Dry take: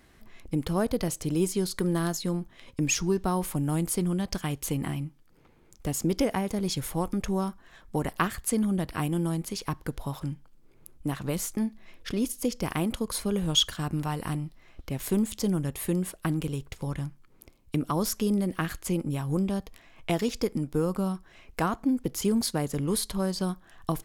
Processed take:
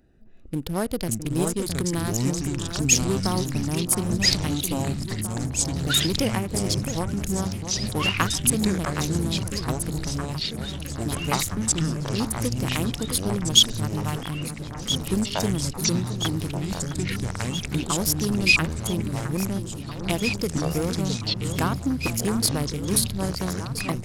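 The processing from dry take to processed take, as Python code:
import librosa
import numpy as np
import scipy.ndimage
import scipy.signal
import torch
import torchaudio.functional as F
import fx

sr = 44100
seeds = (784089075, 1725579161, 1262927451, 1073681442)

p1 = fx.wiener(x, sr, points=41)
p2 = fx.high_shelf(p1, sr, hz=2300.0, db=11.5)
p3 = p2 + fx.echo_alternate(p2, sr, ms=663, hz=2000.0, feedback_pct=80, wet_db=-9.0, dry=0)
y = fx.echo_pitch(p3, sr, ms=374, semitones=-5, count=3, db_per_echo=-3.0)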